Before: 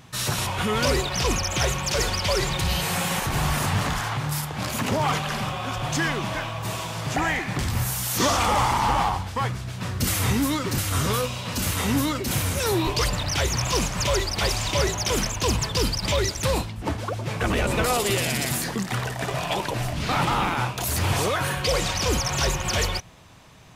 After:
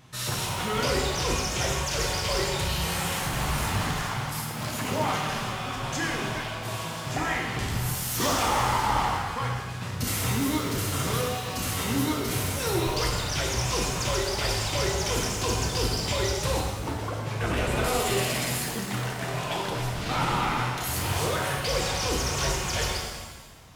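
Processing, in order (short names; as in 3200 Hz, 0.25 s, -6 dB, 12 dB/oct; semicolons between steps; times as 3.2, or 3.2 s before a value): shimmer reverb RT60 1.3 s, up +7 st, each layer -8 dB, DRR -0.5 dB; gain -6.5 dB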